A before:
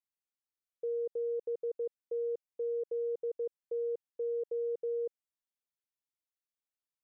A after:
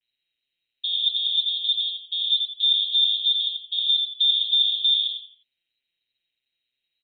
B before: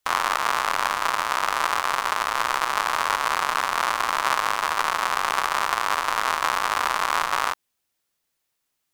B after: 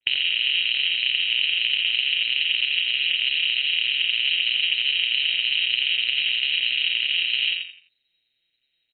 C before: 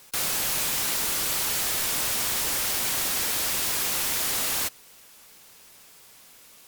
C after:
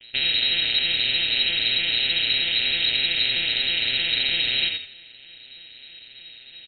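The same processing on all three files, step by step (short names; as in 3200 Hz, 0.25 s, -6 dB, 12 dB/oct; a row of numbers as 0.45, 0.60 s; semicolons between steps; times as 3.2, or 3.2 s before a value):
arpeggiated vocoder minor triad, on A#2, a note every 0.105 s; compressor 6:1, threshold -30 dBFS; fixed phaser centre 1200 Hz, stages 4; on a send: frequency-shifting echo 85 ms, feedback 31%, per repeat +38 Hz, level -5 dB; on the sum: inverted band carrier 4000 Hz; match loudness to -20 LUFS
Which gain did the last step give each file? +28.0, +11.0, +13.5 dB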